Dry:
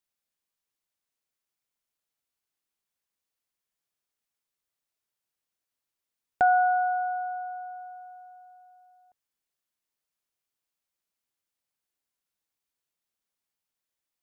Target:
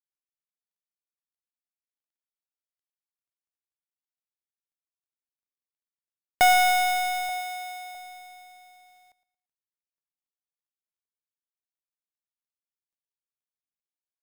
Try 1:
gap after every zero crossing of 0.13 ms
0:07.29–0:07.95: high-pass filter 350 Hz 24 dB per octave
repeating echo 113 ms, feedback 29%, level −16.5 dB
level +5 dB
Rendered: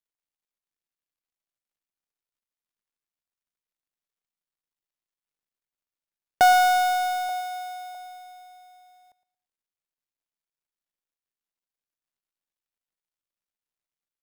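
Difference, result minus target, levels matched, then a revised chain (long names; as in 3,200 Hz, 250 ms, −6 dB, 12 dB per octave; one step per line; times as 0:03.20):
gap after every zero crossing: distortion −10 dB
gap after every zero crossing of 0.29 ms
0:07.29–0:07.95: high-pass filter 350 Hz 24 dB per octave
repeating echo 113 ms, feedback 29%, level −16.5 dB
level +5 dB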